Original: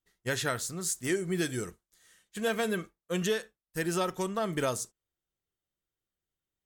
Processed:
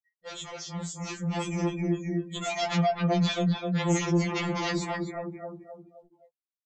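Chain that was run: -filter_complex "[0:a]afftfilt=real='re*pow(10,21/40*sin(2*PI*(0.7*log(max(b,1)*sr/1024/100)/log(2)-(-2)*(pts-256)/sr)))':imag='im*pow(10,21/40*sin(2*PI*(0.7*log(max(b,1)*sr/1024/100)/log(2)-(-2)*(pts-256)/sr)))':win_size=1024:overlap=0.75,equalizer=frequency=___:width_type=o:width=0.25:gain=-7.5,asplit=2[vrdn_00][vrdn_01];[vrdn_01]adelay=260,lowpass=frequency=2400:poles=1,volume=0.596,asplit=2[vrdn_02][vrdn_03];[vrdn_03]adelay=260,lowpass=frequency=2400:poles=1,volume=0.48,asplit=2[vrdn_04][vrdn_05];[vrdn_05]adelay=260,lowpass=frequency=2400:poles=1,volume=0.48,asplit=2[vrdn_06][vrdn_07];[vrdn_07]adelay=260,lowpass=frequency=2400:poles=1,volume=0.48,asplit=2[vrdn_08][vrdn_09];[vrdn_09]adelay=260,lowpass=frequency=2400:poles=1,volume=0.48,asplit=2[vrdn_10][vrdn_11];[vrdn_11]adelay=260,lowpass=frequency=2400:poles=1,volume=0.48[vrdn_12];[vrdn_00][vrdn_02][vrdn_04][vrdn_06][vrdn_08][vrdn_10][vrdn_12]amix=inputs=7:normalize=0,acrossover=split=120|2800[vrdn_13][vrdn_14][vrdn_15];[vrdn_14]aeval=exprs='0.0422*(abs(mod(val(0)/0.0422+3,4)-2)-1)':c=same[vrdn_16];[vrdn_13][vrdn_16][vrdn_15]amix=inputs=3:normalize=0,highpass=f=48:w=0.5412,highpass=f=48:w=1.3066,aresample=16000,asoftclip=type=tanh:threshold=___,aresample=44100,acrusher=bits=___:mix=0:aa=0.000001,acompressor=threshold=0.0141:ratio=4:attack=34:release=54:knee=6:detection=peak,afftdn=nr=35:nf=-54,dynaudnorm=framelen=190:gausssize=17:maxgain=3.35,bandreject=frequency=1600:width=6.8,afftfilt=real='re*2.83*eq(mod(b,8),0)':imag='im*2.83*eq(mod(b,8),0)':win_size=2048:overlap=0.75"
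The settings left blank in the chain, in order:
2800, 0.0335, 9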